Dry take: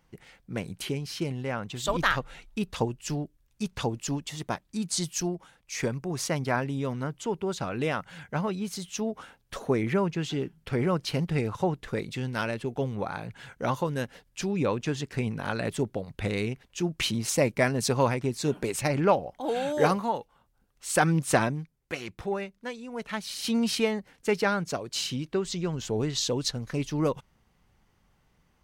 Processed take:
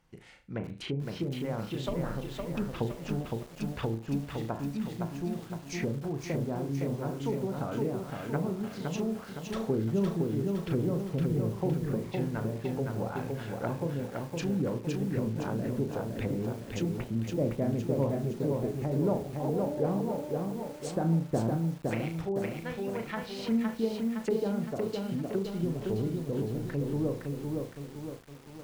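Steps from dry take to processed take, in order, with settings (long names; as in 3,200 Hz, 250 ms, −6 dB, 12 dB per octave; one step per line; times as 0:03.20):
flutter between parallel walls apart 6.1 metres, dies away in 0.32 s
treble cut that deepens with the level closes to 450 Hz, closed at −24.5 dBFS
feedback echo at a low word length 513 ms, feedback 55%, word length 8 bits, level −3 dB
level −3 dB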